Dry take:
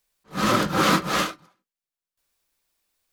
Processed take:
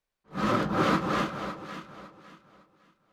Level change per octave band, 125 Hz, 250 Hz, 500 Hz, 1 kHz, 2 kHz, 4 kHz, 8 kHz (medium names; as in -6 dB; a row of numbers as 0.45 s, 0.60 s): -3.0 dB, -3.0 dB, -3.0 dB, -5.0 dB, -6.5 dB, -11.0 dB, -15.5 dB